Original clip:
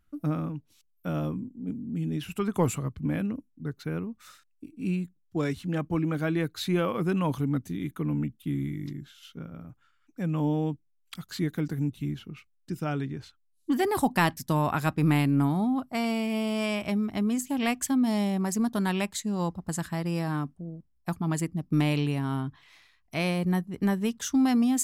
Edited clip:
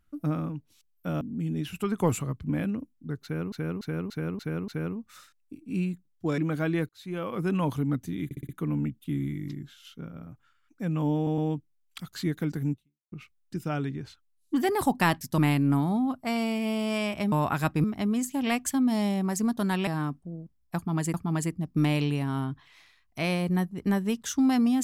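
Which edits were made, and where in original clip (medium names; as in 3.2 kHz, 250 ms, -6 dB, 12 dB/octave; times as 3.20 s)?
1.21–1.77 s: delete
3.79–4.08 s: loop, 6 plays
5.49–6.00 s: delete
6.51–7.17 s: fade in
7.87 s: stutter 0.06 s, 5 plays
10.54 s: stutter 0.11 s, 3 plays
11.88–12.28 s: fade out exponential
14.54–15.06 s: move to 17.00 s
19.03–20.21 s: delete
21.10–21.48 s: loop, 2 plays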